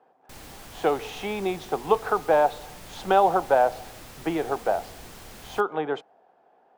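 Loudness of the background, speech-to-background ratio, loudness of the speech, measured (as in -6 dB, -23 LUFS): -44.0 LUFS, 19.0 dB, -25.0 LUFS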